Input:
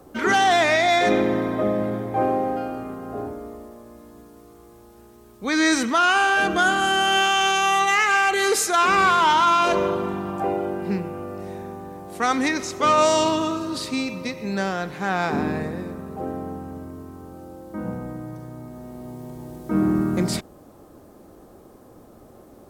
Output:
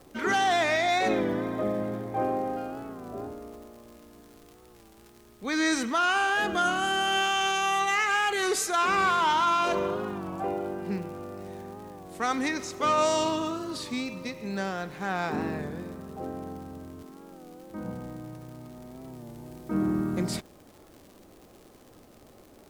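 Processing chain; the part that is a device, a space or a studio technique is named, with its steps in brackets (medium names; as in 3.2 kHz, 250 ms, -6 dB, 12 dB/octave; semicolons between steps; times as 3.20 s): 17.03–17.70 s: steep high-pass 150 Hz 36 dB/octave; warped LP (warped record 33 1/3 rpm, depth 100 cents; crackle 110 per s -35 dBFS; pink noise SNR 34 dB); trim -6.5 dB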